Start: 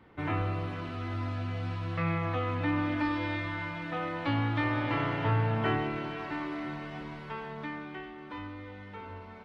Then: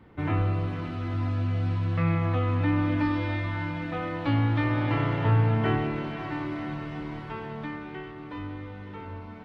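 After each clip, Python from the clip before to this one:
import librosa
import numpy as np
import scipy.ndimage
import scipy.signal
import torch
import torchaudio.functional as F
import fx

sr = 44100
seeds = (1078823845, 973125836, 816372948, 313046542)

y = fx.low_shelf(x, sr, hz=350.0, db=7.5)
y = fx.echo_swing(y, sr, ms=921, ratio=1.5, feedback_pct=51, wet_db=-16)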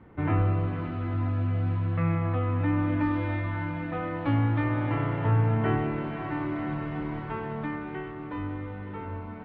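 y = fx.rider(x, sr, range_db=3, speed_s=2.0)
y = scipy.signal.sosfilt(scipy.signal.butter(2, 2200.0, 'lowpass', fs=sr, output='sos'), y)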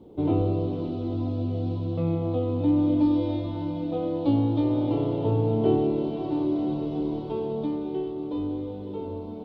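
y = fx.curve_eq(x, sr, hz=(130.0, 410.0, 870.0, 1800.0, 3600.0), db=(0, 13, 1, -23, 13))
y = y * 10.0 ** (-3.0 / 20.0)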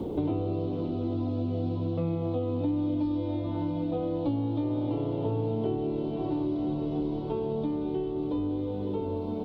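y = fx.band_squash(x, sr, depth_pct=100)
y = y * 10.0 ** (-5.0 / 20.0)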